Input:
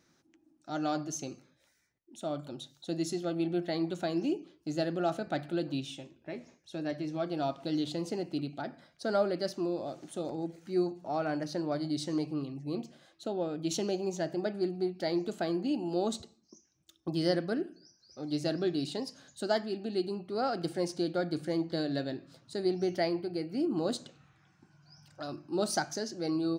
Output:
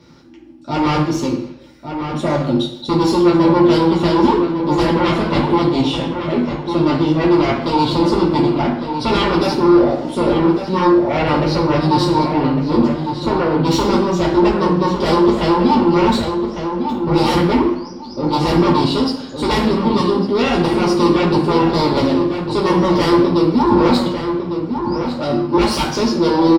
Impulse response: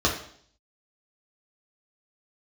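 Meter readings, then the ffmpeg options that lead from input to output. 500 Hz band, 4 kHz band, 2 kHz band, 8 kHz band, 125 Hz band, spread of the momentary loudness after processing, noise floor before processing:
+16.5 dB, +17.5 dB, +18.0 dB, +9.0 dB, +20.5 dB, 7 LU, -71 dBFS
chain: -filter_complex "[0:a]aeval=exprs='0.188*sin(PI/2*7.08*val(0)/0.188)':c=same,asplit=2[s0][s1];[s1]adelay=1153,lowpass=f=2600:p=1,volume=0.447,asplit=2[s2][s3];[s3]adelay=1153,lowpass=f=2600:p=1,volume=0.25,asplit=2[s4][s5];[s5]adelay=1153,lowpass=f=2600:p=1,volume=0.25[s6];[s0][s2][s4][s6]amix=inputs=4:normalize=0[s7];[1:a]atrim=start_sample=2205,asetrate=34398,aresample=44100[s8];[s7][s8]afir=irnorm=-1:irlink=0,volume=0.168"

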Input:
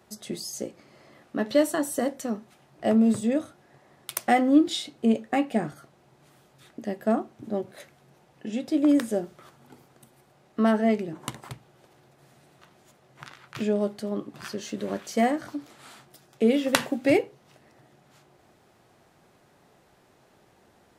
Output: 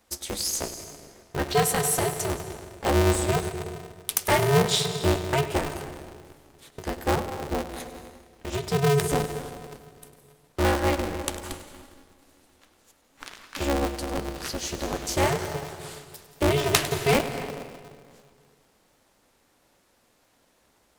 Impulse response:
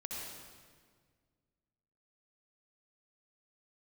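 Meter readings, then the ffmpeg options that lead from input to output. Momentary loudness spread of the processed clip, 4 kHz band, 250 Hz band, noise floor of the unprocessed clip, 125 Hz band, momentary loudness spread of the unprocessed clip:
18 LU, +6.5 dB, -6.5 dB, -61 dBFS, +12.5 dB, 17 LU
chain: -filter_complex "[0:a]asoftclip=type=tanh:threshold=0.224,highshelf=f=3200:g=10.5,agate=range=0.447:threshold=0.00355:ratio=16:detection=peak,asplit=2[s0][s1];[1:a]atrim=start_sample=2205,adelay=101[s2];[s1][s2]afir=irnorm=-1:irlink=0,volume=0.376[s3];[s0][s3]amix=inputs=2:normalize=0,aeval=exprs='val(0)*sgn(sin(2*PI*140*n/s))':c=same"

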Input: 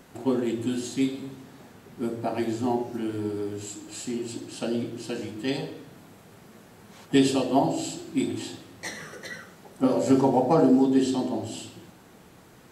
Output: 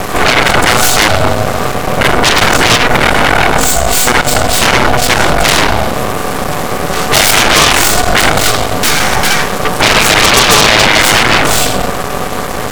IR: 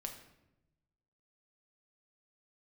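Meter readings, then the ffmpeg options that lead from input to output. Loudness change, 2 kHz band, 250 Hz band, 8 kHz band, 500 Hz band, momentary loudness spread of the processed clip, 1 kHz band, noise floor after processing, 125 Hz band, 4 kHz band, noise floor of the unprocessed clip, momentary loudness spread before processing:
+18.0 dB, +32.5 dB, +7.5 dB, +28.0 dB, +14.5 dB, 10 LU, +23.0 dB, -16 dBFS, +19.0 dB, +29.5 dB, -52 dBFS, 18 LU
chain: -filter_complex "[0:a]equalizer=f=800:t=o:w=0.24:g=12,asplit=2[s0][s1];[s1]acompressor=threshold=0.02:ratio=6,volume=1[s2];[s0][s2]amix=inputs=2:normalize=0,aeval=exprs='val(0)*sin(2*PI*370*n/s)':c=same,aeval=exprs='max(val(0),0)':c=same,apsyclip=9.44,aeval=exprs='1.06*sin(PI/2*5.01*val(0)/1.06)':c=same,volume=0.794"

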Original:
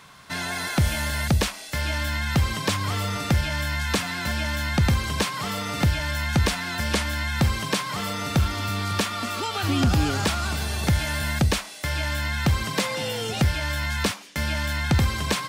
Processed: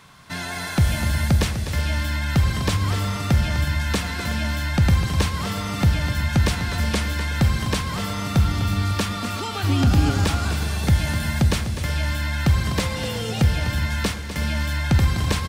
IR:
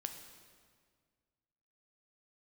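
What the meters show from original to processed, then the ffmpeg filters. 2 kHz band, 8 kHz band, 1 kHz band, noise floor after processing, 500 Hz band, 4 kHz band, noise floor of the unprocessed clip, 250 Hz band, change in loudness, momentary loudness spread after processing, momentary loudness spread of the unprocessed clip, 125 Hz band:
-0.5 dB, -0.5 dB, -0.5 dB, -30 dBFS, 0.0 dB, -0.5 dB, -40 dBFS, +2.5 dB, +2.5 dB, 6 LU, 5 LU, +4.5 dB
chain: -filter_complex "[0:a]aecho=1:1:251|369:0.299|0.141,asplit=2[s0][s1];[1:a]atrim=start_sample=2205,lowshelf=f=250:g=10.5[s2];[s1][s2]afir=irnorm=-1:irlink=0,volume=1.12[s3];[s0][s3]amix=inputs=2:normalize=0,volume=0.473"

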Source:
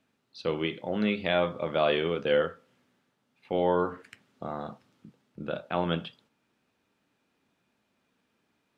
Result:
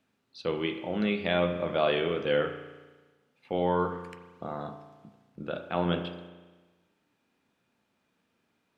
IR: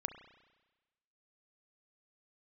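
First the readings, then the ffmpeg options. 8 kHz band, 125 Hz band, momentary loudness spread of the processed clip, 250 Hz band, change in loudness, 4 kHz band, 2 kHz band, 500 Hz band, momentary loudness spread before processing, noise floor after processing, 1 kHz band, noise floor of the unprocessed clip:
no reading, +1.0 dB, 16 LU, 0.0 dB, -1.0 dB, -1.0 dB, -0.5 dB, -1.0 dB, 14 LU, -76 dBFS, -0.5 dB, -76 dBFS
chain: -filter_complex "[1:a]atrim=start_sample=2205,asetrate=41454,aresample=44100[s0];[0:a][s0]afir=irnorm=-1:irlink=0"

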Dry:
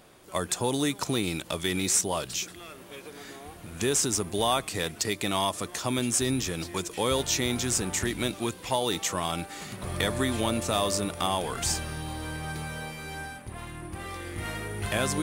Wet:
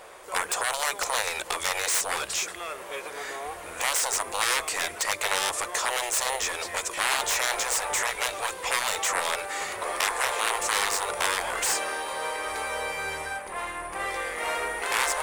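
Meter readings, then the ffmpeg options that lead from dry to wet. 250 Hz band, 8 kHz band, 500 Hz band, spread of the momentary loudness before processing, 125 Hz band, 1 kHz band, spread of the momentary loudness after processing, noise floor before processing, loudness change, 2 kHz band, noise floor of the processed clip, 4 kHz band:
-16.5 dB, +2.0 dB, -2.5 dB, 14 LU, -19.0 dB, +4.5 dB, 8 LU, -47 dBFS, +1.5 dB, +8.0 dB, -40 dBFS, +1.5 dB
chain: -af "aeval=exprs='0.282*(cos(1*acos(clip(val(0)/0.282,-1,1)))-cos(1*PI/2))+0.112*(cos(3*acos(clip(val(0)/0.282,-1,1)))-cos(3*PI/2))+0.0398*(cos(7*acos(clip(val(0)/0.282,-1,1)))-cos(7*PI/2))':c=same,afftfilt=real='re*lt(hypot(re,im),0.0794)':imag='im*lt(hypot(re,im),0.0794)':win_size=1024:overlap=0.75,equalizer=f=125:t=o:w=1:g=-10,equalizer=f=250:t=o:w=1:g=-10,equalizer=f=500:t=o:w=1:g=10,equalizer=f=1000:t=o:w=1:g=9,equalizer=f=2000:t=o:w=1:g=8,equalizer=f=8000:t=o:w=1:g=7"

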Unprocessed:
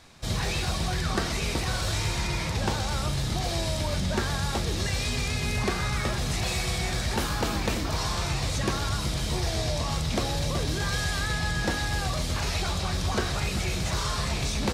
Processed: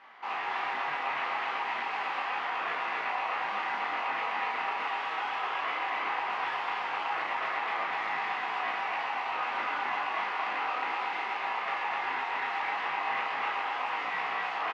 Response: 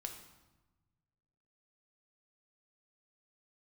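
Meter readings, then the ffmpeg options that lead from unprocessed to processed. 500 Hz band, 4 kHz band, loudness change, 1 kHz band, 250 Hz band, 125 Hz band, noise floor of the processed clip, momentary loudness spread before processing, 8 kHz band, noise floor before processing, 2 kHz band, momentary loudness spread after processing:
-8.5 dB, -10.5 dB, -3.5 dB, +4.5 dB, -19.5 dB, under -35 dB, -35 dBFS, 1 LU, under -25 dB, -30 dBFS, +1.0 dB, 1 LU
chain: -filter_complex "[0:a]bandreject=f=1700:w=7.4,asplit=2[s0][s1];[s1]alimiter=level_in=1.58:limit=0.0631:level=0:latency=1,volume=0.631,volume=0.891[s2];[s0][s2]amix=inputs=2:normalize=0,acrusher=bits=3:mode=log:mix=0:aa=0.000001,aeval=exprs='val(0)*sin(2*PI*880*n/s)':c=same,aeval=exprs='0.0531*(abs(mod(val(0)/0.0531+3,4)-2)-1)':c=same,flanger=delay=17.5:depth=3:speed=0.35,crystalizer=i=6.5:c=0,highpass=280,equalizer=f=430:t=q:w=4:g=3,equalizer=f=770:t=q:w=4:g=5,equalizer=f=1200:t=q:w=4:g=9,equalizer=f=2000:t=q:w=4:g=7,lowpass=f=2400:w=0.5412,lowpass=f=2400:w=1.3066,asplit=2[s3][s4];[s4]adelay=34,volume=0.473[s5];[s3][s5]amix=inputs=2:normalize=0,aecho=1:1:254:0.668,volume=0.473" -ar 48000 -c:a libmp3lame -b:a 96k

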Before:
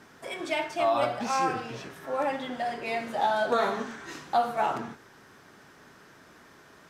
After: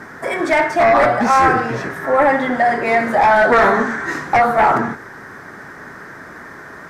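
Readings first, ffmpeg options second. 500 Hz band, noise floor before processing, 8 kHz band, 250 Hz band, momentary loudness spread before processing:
+13.5 dB, -55 dBFS, no reading, +15.0 dB, 13 LU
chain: -af "aeval=exprs='0.211*sin(PI/2*2.51*val(0)/0.211)':c=same,highshelf=f=2300:t=q:w=3:g=-6.5,volume=1.68"

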